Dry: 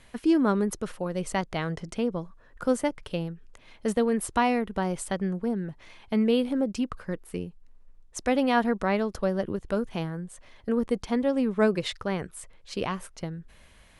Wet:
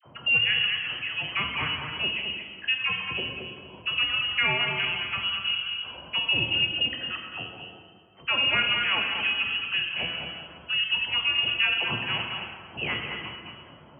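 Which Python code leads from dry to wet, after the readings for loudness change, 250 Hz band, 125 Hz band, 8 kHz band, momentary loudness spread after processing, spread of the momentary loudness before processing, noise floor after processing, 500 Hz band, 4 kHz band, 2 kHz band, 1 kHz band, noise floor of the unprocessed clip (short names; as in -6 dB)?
+3.0 dB, -17.0 dB, -5.5 dB, under -40 dB, 13 LU, 14 LU, -50 dBFS, -14.5 dB, +18.5 dB, +12.0 dB, -4.0 dB, -56 dBFS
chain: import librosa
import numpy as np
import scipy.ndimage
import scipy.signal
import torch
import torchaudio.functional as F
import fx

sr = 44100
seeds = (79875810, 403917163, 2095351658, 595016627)

y = fx.reverse_delay(x, sr, ms=126, wet_db=-12.5)
y = fx.high_shelf(y, sr, hz=2400.0, db=11.5)
y = fx.freq_invert(y, sr, carrier_hz=3100)
y = fx.dispersion(y, sr, late='lows', ms=52.0, hz=1000.0)
y = fx.env_lowpass(y, sr, base_hz=600.0, full_db=-19.0)
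y = scipy.signal.sosfilt(scipy.signal.butter(4, 77.0, 'highpass', fs=sr, output='sos'), y)
y = fx.low_shelf(y, sr, hz=130.0, db=9.0)
y = y + 10.0 ** (-8.0 / 20.0) * np.pad(y, (int(219 * sr / 1000.0), 0))[:len(y)]
y = fx.rev_plate(y, sr, seeds[0], rt60_s=1.5, hf_ratio=0.65, predelay_ms=0, drr_db=2.5)
y = fx.band_squash(y, sr, depth_pct=40)
y = F.gain(torch.from_numpy(y), -3.0).numpy()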